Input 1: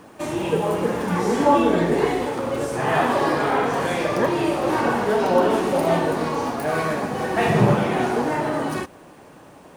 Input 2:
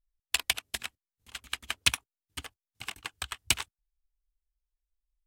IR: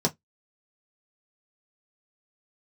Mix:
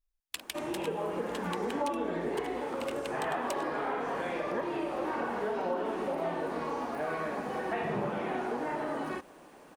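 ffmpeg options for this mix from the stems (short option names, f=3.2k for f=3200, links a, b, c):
-filter_complex "[0:a]acrossover=split=3000[a][b];[b]acompressor=threshold=-48dB:ratio=4:attack=1:release=60[c];[a][c]amix=inputs=2:normalize=0,adelay=350,volume=-7dB[d];[1:a]acompressor=threshold=-37dB:ratio=3,volume=-1dB[e];[d][e]amix=inputs=2:normalize=0,equalizer=f=110:w=1.4:g=-13.5,acompressor=threshold=-31dB:ratio=3"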